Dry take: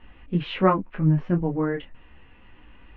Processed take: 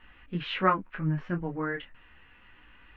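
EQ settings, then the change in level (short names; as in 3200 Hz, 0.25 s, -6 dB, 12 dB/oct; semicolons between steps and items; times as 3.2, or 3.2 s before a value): bell 1500 Hz +8.5 dB 1 oct; high shelf 2200 Hz +10.5 dB; -9.0 dB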